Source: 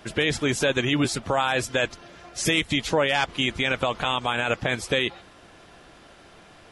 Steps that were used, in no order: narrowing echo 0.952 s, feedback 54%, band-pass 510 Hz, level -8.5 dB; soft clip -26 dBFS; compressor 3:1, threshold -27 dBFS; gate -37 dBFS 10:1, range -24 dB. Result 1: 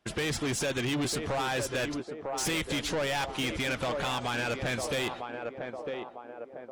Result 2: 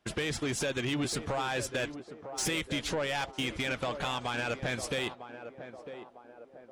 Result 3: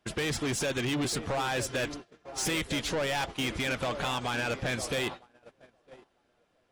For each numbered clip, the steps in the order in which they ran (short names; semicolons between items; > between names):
gate > narrowing echo > soft clip > compressor; compressor > soft clip > gate > narrowing echo; soft clip > compressor > narrowing echo > gate